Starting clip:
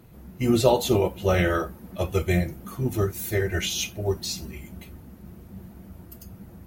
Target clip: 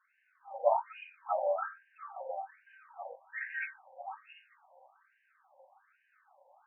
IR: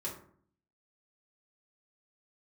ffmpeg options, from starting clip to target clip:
-filter_complex "[0:a]highpass=f=230:t=q:w=0.5412,highpass=f=230:t=q:w=1.307,lowpass=f=3.1k:t=q:w=0.5176,lowpass=f=3.1k:t=q:w=0.7071,lowpass=f=3.1k:t=q:w=1.932,afreqshift=73[a];[1:a]atrim=start_sample=2205,asetrate=61740,aresample=44100[b];[a][b]afir=irnorm=-1:irlink=0,afftfilt=real='re*between(b*sr/1024,720*pow(2200/720,0.5+0.5*sin(2*PI*1.2*pts/sr))/1.41,720*pow(2200/720,0.5+0.5*sin(2*PI*1.2*pts/sr))*1.41)':imag='im*between(b*sr/1024,720*pow(2200/720,0.5+0.5*sin(2*PI*1.2*pts/sr))/1.41,720*pow(2200/720,0.5+0.5*sin(2*PI*1.2*pts/sr))*1.41)':win_size=1024:overlap=0.75,volume=-2dB"

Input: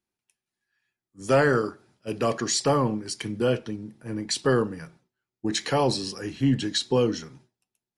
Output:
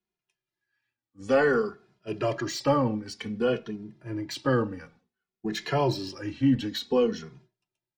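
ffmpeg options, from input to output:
-filter_complex "[0:a]lowpass=4.7k,acrossover=split=200|3000[a][b][c];[c]asoftclip=type=tanh:threshold=-29.5dB[d];[a][b][d]amix=inputs=3:normalize=0,asplit=2[e][f];[f]adelay=2.4,afreqshift=-0.55[g];[e][g]amix=inputs=2:normalize=1,volume=1dB"

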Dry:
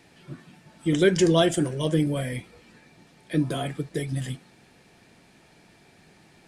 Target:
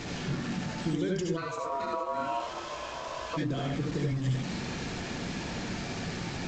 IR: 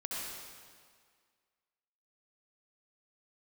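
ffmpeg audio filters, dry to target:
-filter_complex "[0:a]aeval=exprs='val(0)+0.5*0.0376*sgn(val(0))':c=same,acompressor=threshold=-26dB:ratio=16,lowshelf=f=230:g=9.5[a];[1:a]atrim=start_sample=2205,atrim=end_sample=4410[b];[a][b]afir=irnorm=-1:irlink=0,asplit=3[c][d][e];[c]afade=t=out:st=1.36:d=0.02[f];[d]aeval=exprs='val(0)*sin(2*PI*820*n/s)':c=same,afade=t=in:st=1.36:d=0.02,afade=t=out:st=3.36:d=0.02[g];[e]afade=t=in:st=3.36:d=0.02[h];[f][g][h]amix=inputs=3:normalize=0,volume=-3dB" -ar 16000 -c:a pcm_alaw

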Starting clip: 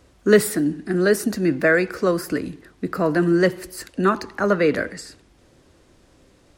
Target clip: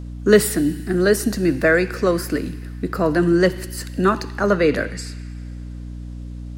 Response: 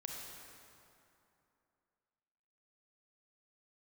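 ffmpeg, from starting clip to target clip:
-filter_complex "[0:a]aeval=exprs='val(0)+0.0251*(sin(2*PI*60*n/s)+sin(2*PI*2*60*n/s)/2+sin(2*PI*3*60*n/s)/3+sin(2*PI*4*60*n/s)/4+sin(2*PI*5*60*n/s)/5)':c=same,asplit=2[a][b];[b]highpass=f=2.7k:t=q:w=1.8[c];[1:a]atrim=start_sample=2205,asetrate=41454,aresample=44100[d];[c][d]afir=irnorm=-1:irlink=0,volume=-10dB[e];[a][e]amix=inputs=2:normalize=0,volume=1.5dB"

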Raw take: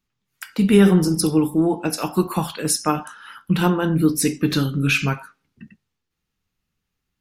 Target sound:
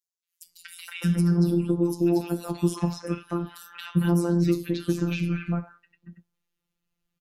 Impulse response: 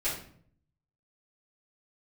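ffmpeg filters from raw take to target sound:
-filter_complex "[0:a]acrossover=split=1700|5100[a][b][c];[b]adelay=230[d];[a]adelay=460[e];[e][d][c]amix=inputs=3:normalize=0,acrossover=split=440|3000|6100[f][g][h][i];[f]acompressor=threshold=-17dB:ratio=4[j];[g]acompressor=threshold=-34dB:ratio=4[k];[h]acompressor=threshold=-44dB:ratio=4[l];[i]acompressor=threshold=-43dB:ratio=4[m];[j][k][l][m]amix=inputs=4:normalize=0,afftfilt=real='hypot(re,im)*cos(PI*b)':imag='0':win_size=1024:overlap=0.75"

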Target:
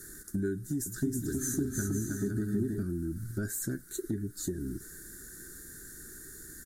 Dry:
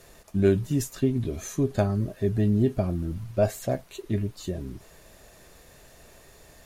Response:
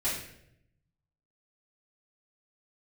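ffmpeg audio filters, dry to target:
-filter_complex "[0:a]firequalizer=gain_entry='entry(110,0);entry(340,9);entry(600,-25);entry(1000,-20);entry(1500,12);entry(2600,-27);entry(3800,-4);entry(8200,13);entry(15000,11)':delay=0.05:min_phase=1,acompressor=threshold=-31dB:ratio=6,asettb=1/sr,asplit=3[a][b][c];[a]atrim=end=0.544[d];[b]atrim=start=0.54:end=2.83,asetpts=PTS-STARTPTS,afade=t=in:d=0.004:c=qsin,afade=t=out:st=2.286:d=0.004:c=qsin,aecho=1:1:320|512|627.2|696.3|737.8:0.631|0.398|0.251|0.158|0.1,atrim=end_sample=100989[e];[c]atrim=start=2.826[f];[d][e]acrossfade=d=0.004:c1=hsin:c2=qsin[g];[g][f]acrossfade=d=0.004:c1=qsin:c2=hsin"

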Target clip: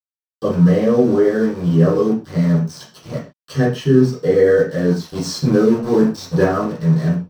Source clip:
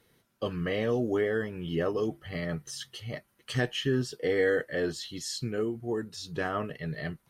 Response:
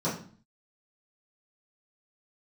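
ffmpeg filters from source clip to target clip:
-filter_complex "[0:a]aeval=exprs='val(0)*gte(abs(val(0)),0.0133)':c=same,asettb=1/sr,asplit=3[a][b][c];[a]atrim=end=5.074[d];[b]atrim=start=5.07:end=6.44,asetpts=PTS-STARTPTS,afade=t=in:d=0.004:c=qsin,afade=t=out:st=1.366:d=0.004:c=qsin,acontrast=32[e];[c]atrim=start=6.436[f];[d][e]acrossfade=d=0.004:c1=hsin:c2=qsin[g];[g][f]acrossfade=d=0.004:c1=qsin:c2=hsin[h];[1:a]atrim=start_sample=2205,atrim=end_sample=6615[i];[h][i]afir=irnorm=-1:irlink=0,volume=-1dB"

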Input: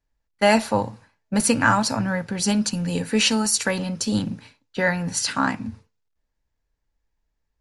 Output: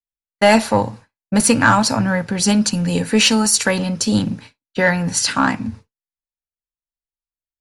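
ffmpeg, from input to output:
-af "acontrast=57,agate=range=-33dB:threshold=-32dB:ratio=3:detection=peak"

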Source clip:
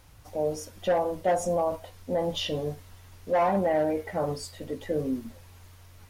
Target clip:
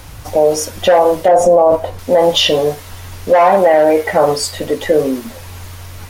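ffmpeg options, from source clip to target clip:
-filter_complex "[0:a]asettb=1/sr,asplit=3[a][b][c];[a]atrim=end=1.284[d];[b]atrim=start=1.28:end=1.99,asetpts=PTS-STARTPTS,afade=t=in:d=0.004:c=qsin,afade=t=out:st=0.706:d=0.004:c=qsin,tiltshelf=f=1.1k:g=9[e];[c]atrim=start=1.986[f];[d][e]acrossfade=d=0.004:c1=hsin:c2=qsin[g];[g][f]acrossfade=d=0.004:c1=qsin:c2=hsin,acrossover=split=380[h][i];[h]acompressor=threshold=-47dB:ratio=5[j];[j][i]amix=inputs=2:normalize=0,alimiter=level_in=21.5dB:limit=-1dB:release=50:level=0:latency=1,volume=-1dB"

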